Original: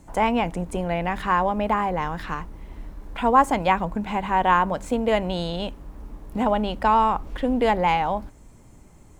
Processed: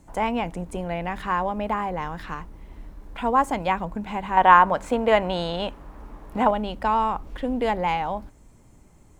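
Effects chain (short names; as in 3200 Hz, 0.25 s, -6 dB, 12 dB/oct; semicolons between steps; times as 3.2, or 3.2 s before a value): 4.37–6.51 bell 1200 Hz +9.5 dB 2.8 oct; gain -3.5 dB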